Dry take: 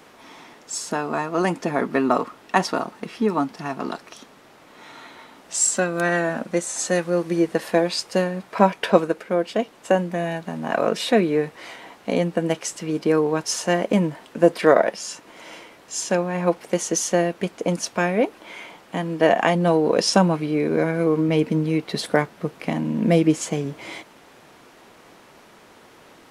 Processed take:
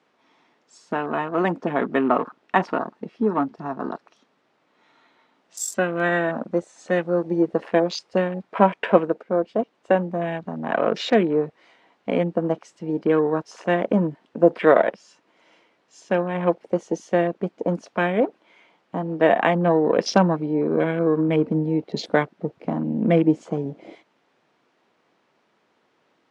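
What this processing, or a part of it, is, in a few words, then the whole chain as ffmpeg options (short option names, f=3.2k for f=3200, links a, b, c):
over-cleaned archive recording: -af "highpass=130,lowpass=5.1k,afwtdn=0.0251"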